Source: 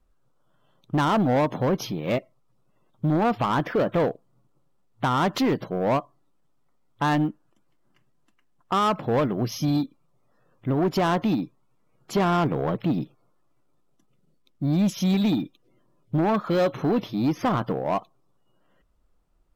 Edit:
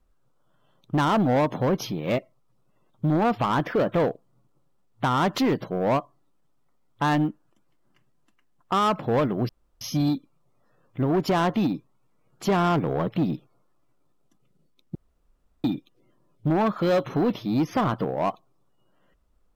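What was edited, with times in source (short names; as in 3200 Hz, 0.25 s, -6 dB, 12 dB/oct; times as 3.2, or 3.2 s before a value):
9.49 insert room tone 0.32 s
14.63–15.32 room tone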